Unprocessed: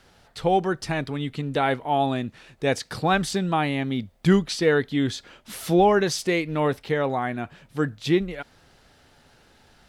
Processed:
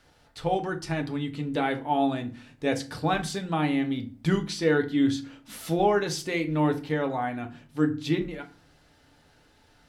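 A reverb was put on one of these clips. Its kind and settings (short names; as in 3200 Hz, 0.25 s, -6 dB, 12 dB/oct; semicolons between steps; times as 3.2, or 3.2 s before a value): FDN reverb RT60 0.37 s, low-frequency decay 1.6×, high-frequency decay 0.7×, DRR 4.5 dB; gain -5.5 dB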